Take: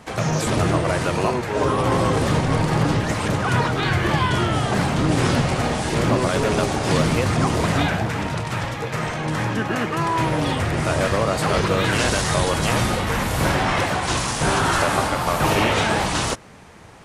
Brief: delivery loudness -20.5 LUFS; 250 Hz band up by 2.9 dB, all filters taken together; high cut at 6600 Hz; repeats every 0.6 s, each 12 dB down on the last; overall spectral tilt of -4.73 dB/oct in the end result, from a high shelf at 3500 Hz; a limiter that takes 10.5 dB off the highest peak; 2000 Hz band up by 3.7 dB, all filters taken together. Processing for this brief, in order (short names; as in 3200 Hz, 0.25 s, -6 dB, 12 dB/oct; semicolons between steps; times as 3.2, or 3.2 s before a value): LPF 6600 Hz; bell 250 Hz +4 dB; bell 2000 Hz +6.5 dB; high shelf 3500 Hz -6.5 dB; limiter -15.5 dBFS; feedback echo 0.6 s, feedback 25%, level -12 dB; gain +3 dB